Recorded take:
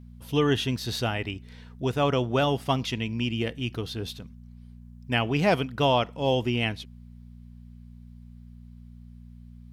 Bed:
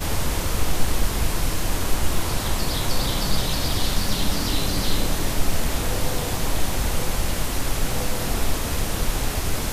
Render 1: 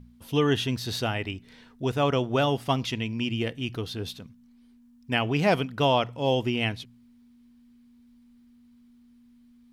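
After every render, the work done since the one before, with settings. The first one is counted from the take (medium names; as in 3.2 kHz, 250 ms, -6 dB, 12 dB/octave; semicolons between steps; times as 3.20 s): de-hum 60 Hz, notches 3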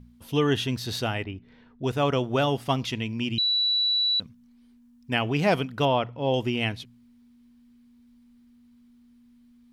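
1.24–1.84 s: tape spacing loss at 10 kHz 29 dB; 3.38–4.20 s: bleep 3.94 kHz -20.5 dBFS; 5.85–6.34 s: distance through air 220 m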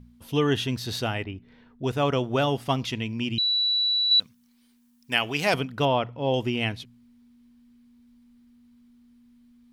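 4.11–5.54 s: tilt EQ +3 dB/octave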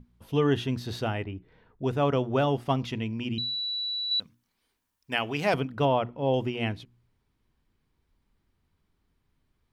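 treble shelf 2.3 kHz -10.5 dB; hum notches 60/120/180/240/300/360 Hz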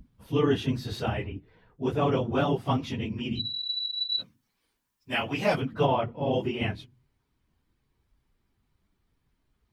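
phase randomisation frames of 50 ms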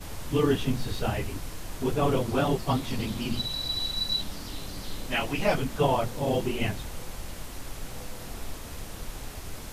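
add bed -14.5 dB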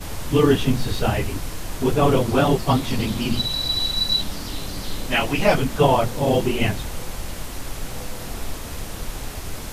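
trim +7.5 dB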